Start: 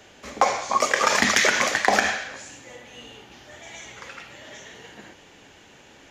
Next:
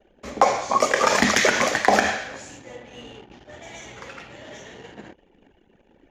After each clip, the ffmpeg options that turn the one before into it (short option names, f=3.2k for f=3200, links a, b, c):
-filter_complex "[0:a]anlmdn=0.0398,acrossover=split=860|2200[a][b][c];[a]acontrast=55[d];[d][b][c]amix=inputs=3:normalize=0,volume=-1dB"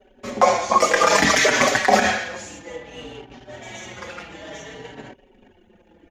-filter_complex "[0:a]alimiter=level_in=7dB:limit=-1dB:release=50:level=0:latency=1,asplit=2[a][b];[b]adelay=4.8,afreqshift=-0.59[c];[a][c]amix=inputs=2:normalize=1"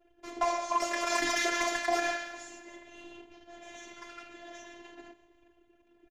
-filter_complex "[0:a]asplit=6[a][b][c][d][e][f];[b]adelay=159,afreqshift=34,volume=-19dB[g];[c]adelay=318,afreqshift=68,volume=-23.6dB[h];[d]adelay=477,afreqshift=102,volume=-28.2dB[i];[e]adelay=636,afreqshift=136,volume=-32.7dB[j];[f]adelay=795,afreqshift=170,volume=-37.3dB[k];[a][g][h][i][j][k]amix=inputs=6:normalize=0,asoftclip=type=tanh:threshold=-10dB,afftfilt=real='hypot(re,im)*cos(PI*b)':imag='0':win_size=512:overlap=0.75,volume=-7.5dB"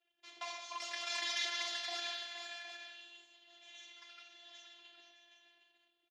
-filter_complex "[0:a]bandpass=f=3.5k:t=q:w=2.2:csg=0,asplit=2[a][b];[b]aecho=0:1:470|611|766:0.316|0.188|0.251[c];[a][c]amix=inputs=2:normalize=0,volume=1dB"